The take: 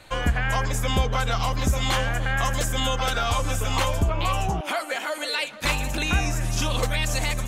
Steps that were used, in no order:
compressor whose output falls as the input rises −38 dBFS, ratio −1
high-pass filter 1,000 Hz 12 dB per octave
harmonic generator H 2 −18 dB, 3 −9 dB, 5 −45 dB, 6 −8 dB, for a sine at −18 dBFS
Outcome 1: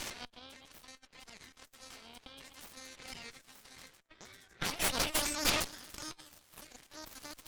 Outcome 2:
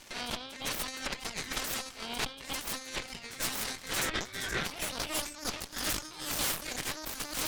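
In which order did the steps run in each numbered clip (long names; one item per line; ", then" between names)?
compressor whose output falls as the input rises, then high-pass filter, then harmonic generator
high-pass filter, then compressor whose output falls as the input rises, then harmonic generator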